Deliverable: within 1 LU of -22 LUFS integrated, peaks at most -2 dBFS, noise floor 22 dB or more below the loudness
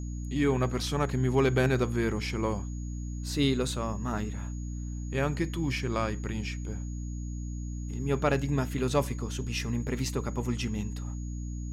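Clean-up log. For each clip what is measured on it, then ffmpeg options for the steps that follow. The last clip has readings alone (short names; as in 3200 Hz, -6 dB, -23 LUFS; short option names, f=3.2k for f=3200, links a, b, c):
hum 60 Hz; harmonics up to 300 Hz; hum level -33 dBFS; steady tone 6700 Hz; tone level -52 dBFS; loudness -31.0 LUFS; peak -13.0 dBFS; loudness target -22.0 LUFS
-> -af "bandreject=f=60:t=h:w=6,bandreject=f=120:t=h:w=6,bandreject=f=180:t=h:w=6,bandreject=f=240:t=h:w=6,bandreject=f=300:t=h:w=6"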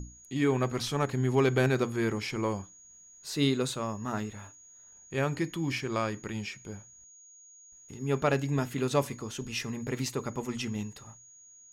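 hum none; steady tone 6700 Hz; tone level -52 dBFS
-> -af "bandreject=f=6.7k:w=30"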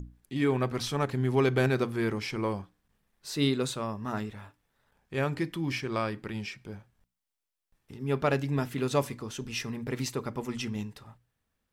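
steady tone none; loudness -31.0 LUFS; peak -14.0 dBFS; loudness target -22.0 LUFS
-> -af "volume=9dB"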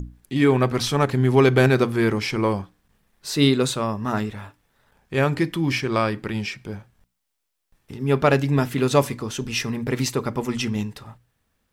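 loudness -22.0 LUFS; peak -5.0 dBFS; noise floor -77 dBFS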